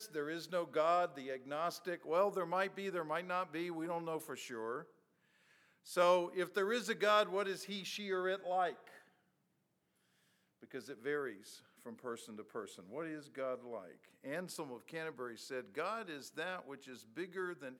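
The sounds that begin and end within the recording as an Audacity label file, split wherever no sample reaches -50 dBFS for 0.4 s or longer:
5.860000	8.970000	sound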